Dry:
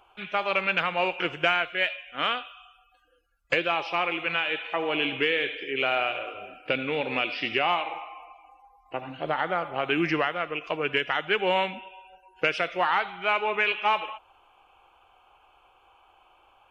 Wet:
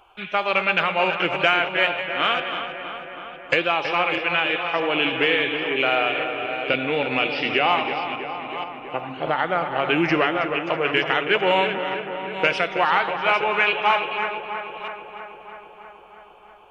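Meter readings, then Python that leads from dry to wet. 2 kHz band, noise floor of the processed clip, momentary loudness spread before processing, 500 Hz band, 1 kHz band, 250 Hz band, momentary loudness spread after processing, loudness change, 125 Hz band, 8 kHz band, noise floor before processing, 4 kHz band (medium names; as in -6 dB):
+5.5 dB, -46 dBFS, 10 LU, +6.0 dB, +5.5 dB, +6.0 dB, 12 LU, +5.0 dB, +6.0 dB, no reading, -61 dBFS, +5.5 dB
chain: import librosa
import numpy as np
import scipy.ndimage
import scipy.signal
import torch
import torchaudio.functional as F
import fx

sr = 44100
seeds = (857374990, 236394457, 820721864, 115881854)

y = fx.reverse_delay(x, sr, ms=480, wet_db=-10)
y = fx.echo_filtered(y, sr, ms=323, feedback_pct=73, hz=3400.0, wet_db=-9.0)
y = F.gain(torch.from_numpy(y), 4.5).numpy()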